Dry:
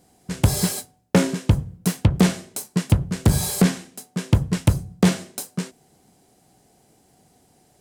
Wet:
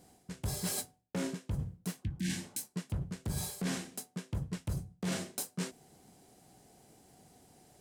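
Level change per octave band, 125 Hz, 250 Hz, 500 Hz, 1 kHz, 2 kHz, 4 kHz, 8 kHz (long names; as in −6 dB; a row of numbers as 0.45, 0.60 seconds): −17.5, −17.0, −17.0, −16.5, −14.0, −12.5, −11.5 decibels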